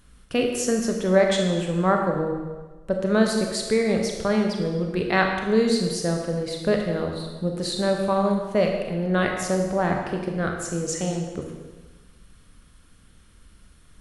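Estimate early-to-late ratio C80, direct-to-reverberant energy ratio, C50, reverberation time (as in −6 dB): 5.0 dB, 1.5 dB, 3.5 dB, 1.3 s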